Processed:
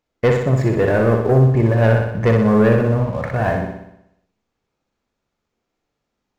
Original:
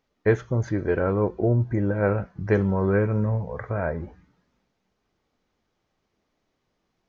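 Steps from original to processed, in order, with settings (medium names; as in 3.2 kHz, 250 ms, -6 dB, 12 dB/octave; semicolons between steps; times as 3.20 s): tape speed +11%; waveshaping leveller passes 2; flutter echo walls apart 10.5 m, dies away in 0.78 s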